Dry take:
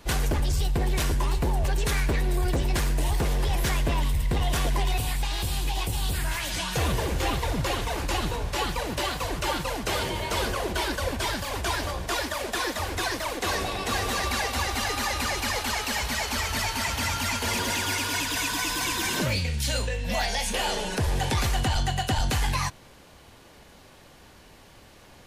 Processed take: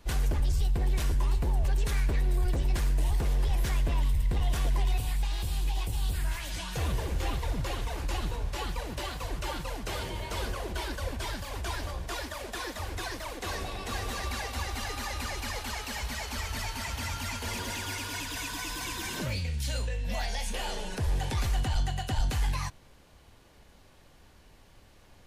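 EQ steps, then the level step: low shelf 75 Hz +11 dB; -8.5 dB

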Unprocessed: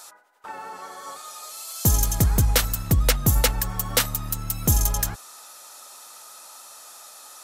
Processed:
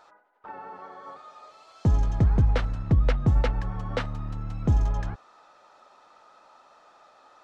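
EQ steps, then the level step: tape spacing loss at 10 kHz 43 dB; 0.0 dB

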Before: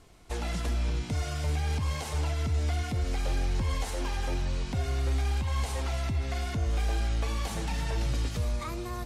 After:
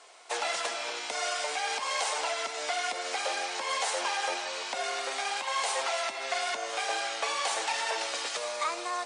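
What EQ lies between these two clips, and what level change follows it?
HPF 550 Hz 24 dB/oct; brick-wall FIR low-pass 10000 Hz; +8.5 dB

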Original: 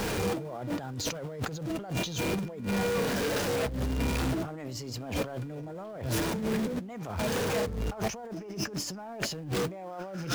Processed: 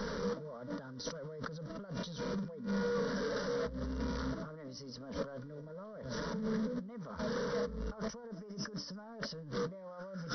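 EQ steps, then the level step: brick-wall FIR low-pass 6000 Hz; fixed phaser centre 510 Hz, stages 8; -4.5 dB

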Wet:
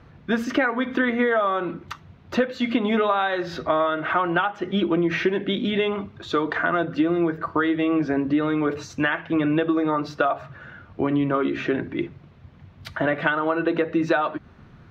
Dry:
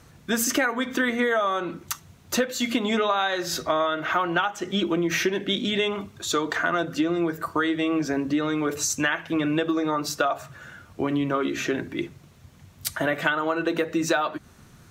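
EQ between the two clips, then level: air absorption 330 m; +3.5 dB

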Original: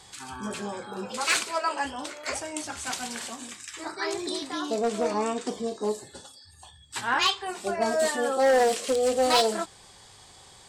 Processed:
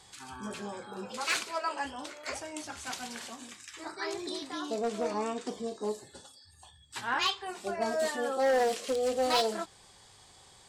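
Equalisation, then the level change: dynamic EQ 8300 Hz, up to -5 dB, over -48 dBFS, Q 2.8; -5.5 dB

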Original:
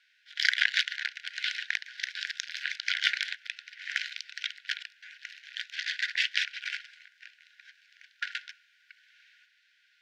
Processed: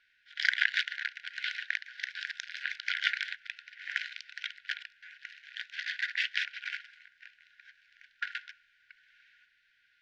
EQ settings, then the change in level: tilt -4.5 dB/oct; +2.5 dB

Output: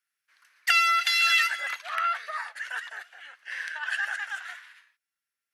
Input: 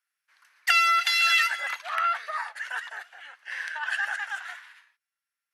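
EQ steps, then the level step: bell 880 Hz -6 dB 0.74 oct; 0.0 dB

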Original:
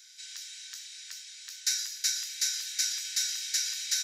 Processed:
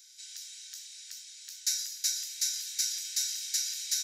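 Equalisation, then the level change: HPF 1400 Hz 12 dB/oct; high shelf 4400 Hz +11.5 dB; -8.5 dB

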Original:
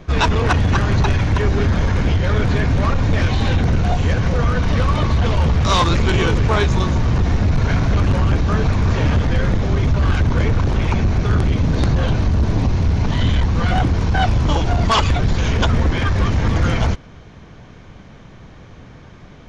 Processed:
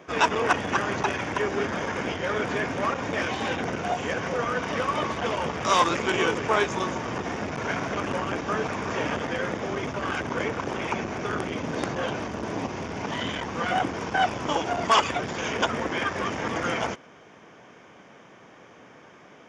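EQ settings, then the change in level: HPF 340 Hz 12 dB/oct; bell 4100 Hz -14.5 dB 0.26 oct; -2.5 dB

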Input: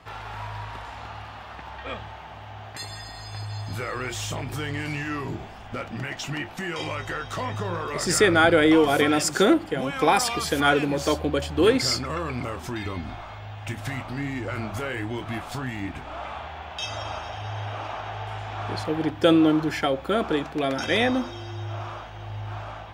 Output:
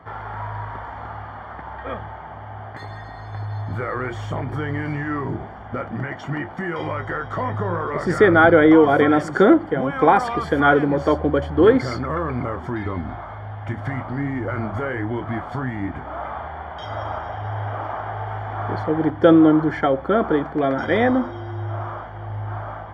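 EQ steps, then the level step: polynomial smoothing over 41 samples; HPF 53 Hz; +5.5 dB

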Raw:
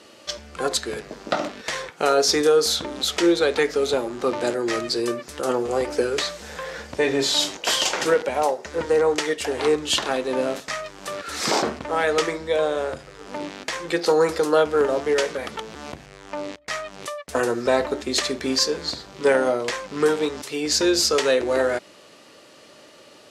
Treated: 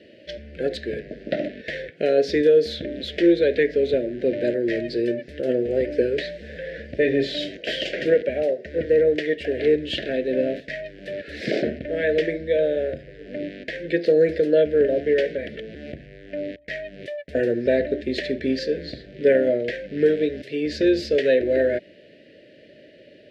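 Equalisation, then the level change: elliptic band-stop 620–1700 Hz, stop band 40 dB; air absorption 410 m; +3.5 dB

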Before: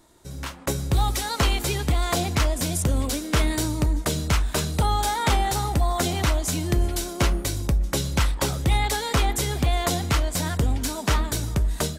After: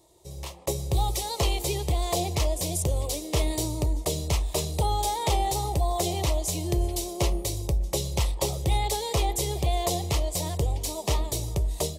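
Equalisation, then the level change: HPF 43 Hz; bell 320 Hz +7.5 dB 0.9 oct; fixed phaser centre 620 Hz, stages 4; -1.5 dB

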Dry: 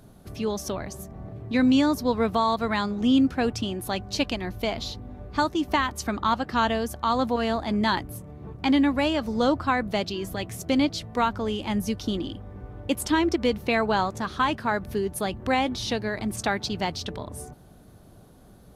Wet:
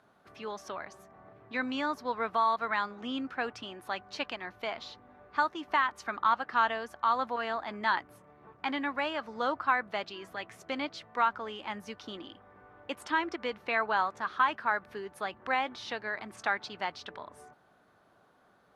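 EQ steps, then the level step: band-pass 1400 Hz, Q 1.3; 0.0 dB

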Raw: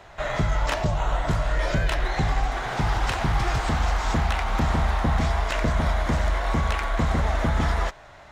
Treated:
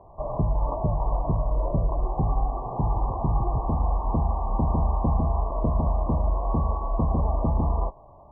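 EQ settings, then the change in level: brick-wall FIR low-pass 1200 Hz; air absorption 470 m; 0.0 dB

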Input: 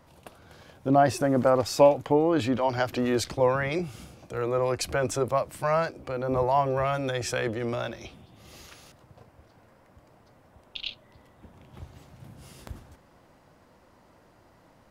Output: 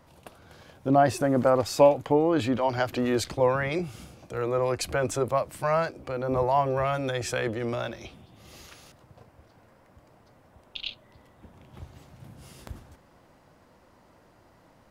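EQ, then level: dynamic EQ 5500 Hz, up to -4 dB, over -56 dBFS, Q 6.9; 0.0 dB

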